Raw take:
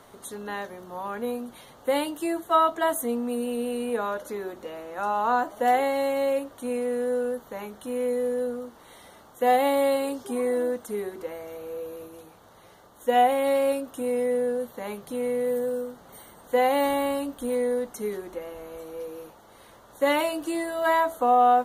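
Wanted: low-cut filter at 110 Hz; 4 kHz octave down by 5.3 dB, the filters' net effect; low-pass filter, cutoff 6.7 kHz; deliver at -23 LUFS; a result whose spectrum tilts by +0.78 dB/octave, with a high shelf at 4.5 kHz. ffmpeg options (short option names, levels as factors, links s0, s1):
-af "highpass=110,lowpass=6700,equalizer=f=4000:t=o:g=-6,highshelf=f=4500:g=-3,volume=1.5"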